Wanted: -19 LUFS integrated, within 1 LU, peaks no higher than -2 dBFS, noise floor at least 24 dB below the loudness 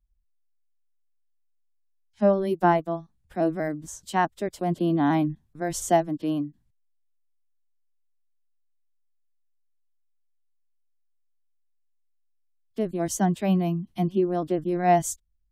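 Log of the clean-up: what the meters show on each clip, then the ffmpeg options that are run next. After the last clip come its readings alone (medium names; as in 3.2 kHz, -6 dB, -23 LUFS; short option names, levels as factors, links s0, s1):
loudness -25.5 LUFS; peak level -9.0 dBFS; loudness target -19.0 LUFS
-> -af "volume=2.11"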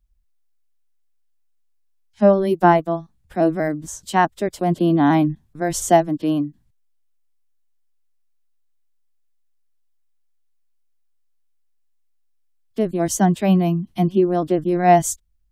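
loudness -19.0 LUFS; peak level -2.5 dBFS; noise floor -63 dBFS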